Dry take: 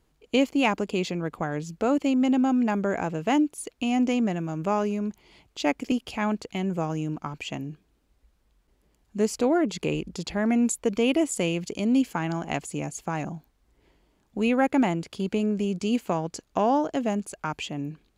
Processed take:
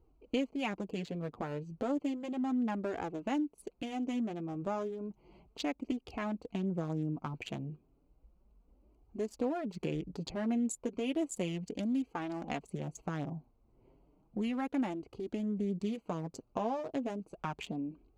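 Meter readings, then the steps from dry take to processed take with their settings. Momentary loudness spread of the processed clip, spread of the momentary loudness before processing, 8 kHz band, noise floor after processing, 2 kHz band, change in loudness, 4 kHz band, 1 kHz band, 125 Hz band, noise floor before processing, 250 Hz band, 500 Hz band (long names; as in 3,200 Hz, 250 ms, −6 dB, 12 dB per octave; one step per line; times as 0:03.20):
7 LU, 10 LU, −13.0 dB, −70 dBFS, −13.0 dB, −10.5 dB, −12.0 dB, −11.5 dB, −8.0 dB, −68 dBFS, −10.0 dB, −11.0 dB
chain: adaptive Wiener filter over 25 samples
downward compressor 2.5 to 1, threshold −38 dBFS, peak gain reduction 13.5 dB
flanger 0.33 Hz, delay 2.3 ms, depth 6.7 ms, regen −16%
level +4 dB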